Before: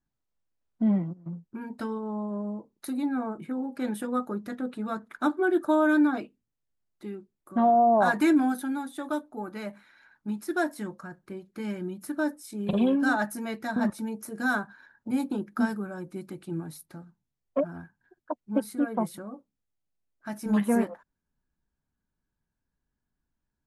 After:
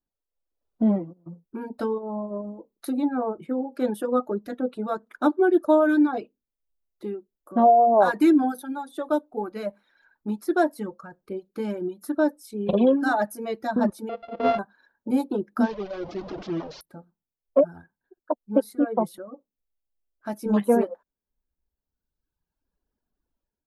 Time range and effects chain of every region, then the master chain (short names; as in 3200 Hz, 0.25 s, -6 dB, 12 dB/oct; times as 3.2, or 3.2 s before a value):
14.09–14.59 sample sorter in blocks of 64 samples + Bessel low-pass 2300 Hz, order 4
15.63–16.81 delta modulation 32 kbps, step -31 dBFS + high shelf 3600 Hz -11 dB
whole clip: reverb removal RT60 1.5 s; graphic EQ 125/500/2000/8000 Hz -8/+7/-7/-8 dB; AGC gain up to 10 dB; gain -5 dB